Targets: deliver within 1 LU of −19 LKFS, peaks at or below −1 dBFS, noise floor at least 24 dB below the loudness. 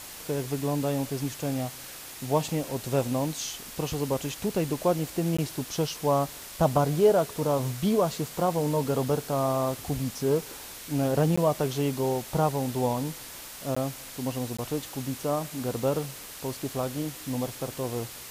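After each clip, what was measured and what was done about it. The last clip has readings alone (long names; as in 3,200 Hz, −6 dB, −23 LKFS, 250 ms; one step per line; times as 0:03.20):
number of dropouts 4; longest dropout 15 ms; background noise floor −43 dBFS; target noise floor −53 dBFS; integrated loudness −28.5 LKFS; sample peak −10.5 dBFS; target loudness −19.0 LKFS
→ repair the gap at 0:05.37/0:11.36/0:13.75/0:14.57, 15 ms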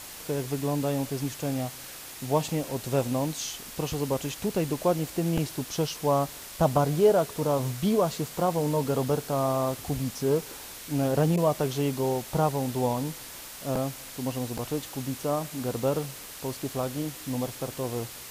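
number of dropouts 0; background noise floor −43 dBFS; target noise floor −53 dBFS
→ broadband denoise 10 dB, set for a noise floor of −43 dBFS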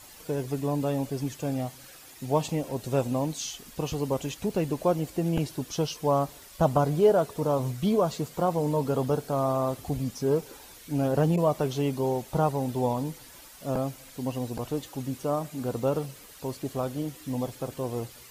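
background noise floor −49 dBFS; target noise floor −53 dBFS
→ broadband denoise 6 dB, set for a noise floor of −49 dBFS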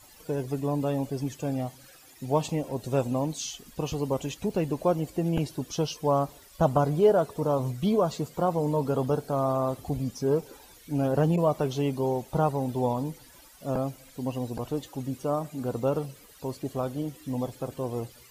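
background noise floor −53 dBFS; integrated loudness −28.5 LKFS; sample peak −11.0 dBFS; target loudness −19.0 LKFS
→ level +9.5 dB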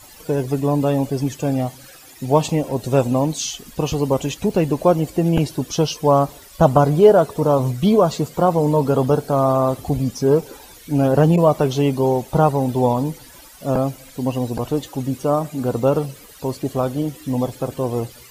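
integrated loudness −19.0 LKFS; sample peak −1.5 dBFS; background noise floor −44 dBFS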